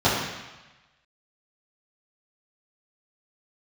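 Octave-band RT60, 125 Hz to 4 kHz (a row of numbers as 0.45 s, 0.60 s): 1.2 s, 1.0 s, 1.0 s, 1.2 s, 1.2 s, 1.1 s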